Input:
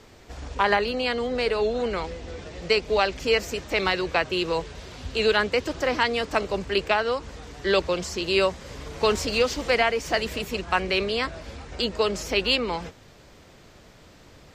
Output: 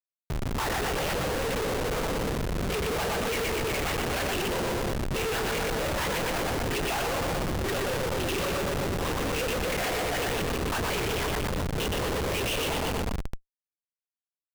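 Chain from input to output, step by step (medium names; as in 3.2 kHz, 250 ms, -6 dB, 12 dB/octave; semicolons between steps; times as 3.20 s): LPC vocoder at 8 kHz whisper; on a send: feedback delay 120 ms, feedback 58%, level -5 dB; on the sum: Schmitt trigger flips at -34.5 dBFS; trim -3.5 dB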